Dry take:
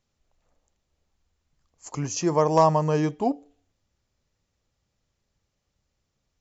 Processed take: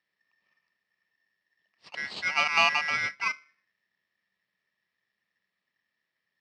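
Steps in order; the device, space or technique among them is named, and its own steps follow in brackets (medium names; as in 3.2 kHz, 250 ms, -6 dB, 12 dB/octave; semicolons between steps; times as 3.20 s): ring modulator pedal into a guitar cabinet (polarity switched at an audio rate 1.8 kHz; cabinet simulation 97–4300 Hz, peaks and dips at 190 Hz +8 dB, 800 Hz -3 dB, 1.5 kHz -9 dB); trim -2.5 dB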